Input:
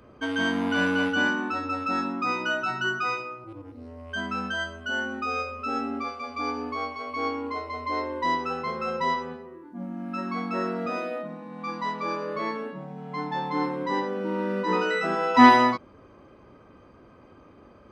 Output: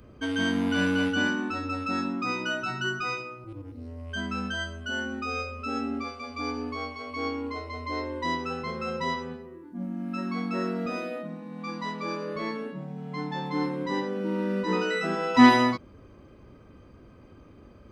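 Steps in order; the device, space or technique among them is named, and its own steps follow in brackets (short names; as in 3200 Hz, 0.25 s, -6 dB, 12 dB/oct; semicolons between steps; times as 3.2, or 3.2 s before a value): smiley-face EQ (low shelf 120 Hz +9 dB; bell 940 Hz -6 dB 1.7 oct; high shelf 7000 Hz +5 dB)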